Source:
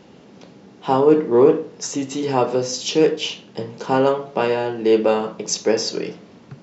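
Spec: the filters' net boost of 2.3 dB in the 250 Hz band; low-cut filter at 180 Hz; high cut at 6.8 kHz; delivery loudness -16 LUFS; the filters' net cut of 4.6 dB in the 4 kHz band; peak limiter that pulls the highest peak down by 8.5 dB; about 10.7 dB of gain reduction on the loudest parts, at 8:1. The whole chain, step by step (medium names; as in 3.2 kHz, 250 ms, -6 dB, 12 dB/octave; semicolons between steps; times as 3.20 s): high-pass 180 Hz; low-pass 6.8 kHz; peaking EQ 250 Hz +4 dB; peaking EQ 4 kHz -6 dB; compression 8:1, threshold -18 dBFS; trim +11 dB; peak limiter -5 dBFS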